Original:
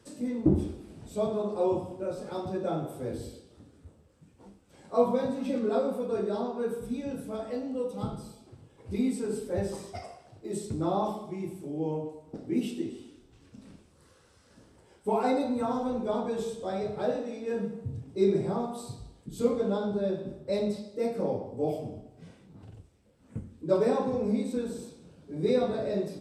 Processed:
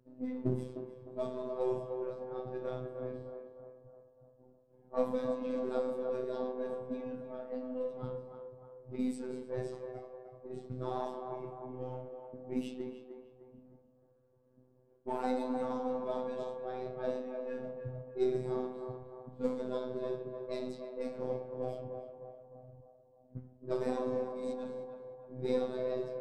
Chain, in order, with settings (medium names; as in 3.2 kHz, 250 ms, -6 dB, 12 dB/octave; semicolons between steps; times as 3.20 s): partial rectifier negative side -3 dB; level-controlled noise filter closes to 500 Hz, open at -24.5 dBFS; 24.23–24.67 s: compressor with a negative ratio -36 dBFS, ratio -1; robot voice 127 Hz; on a send: band-passed feedback delay 305 ms, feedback 58%, band-pass 760 Hz, level -5 dB; on the sum: trim -4.5 dB